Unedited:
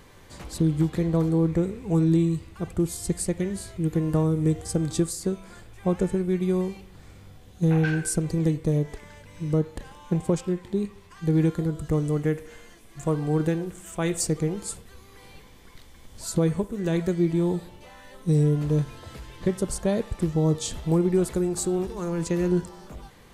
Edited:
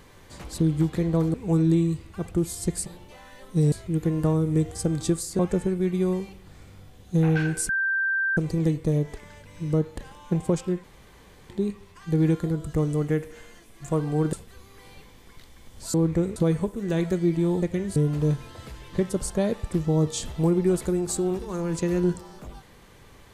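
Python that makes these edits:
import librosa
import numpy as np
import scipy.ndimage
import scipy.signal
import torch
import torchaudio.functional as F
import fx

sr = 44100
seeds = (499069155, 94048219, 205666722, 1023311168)

y = fx.edit(x, sr, fx.move(start_s=1.34, length_s=0.42, to_s=16.32),
    fx.swap(start_s=3.28, length_s=0.34, other_s=17.58, other_length_s=0.86),
    fx.cut(start_s=5.29, length_s=0.58),
    fx.insert_tone(at_s=8.17, length_s=0.68, hz=1570.0, db=-21.5),
    fx.insert_room_tone(at_s=10.64, length_s=0.65),
    fx.cut(start_s=13.48, length_s=1.23), tone=tone)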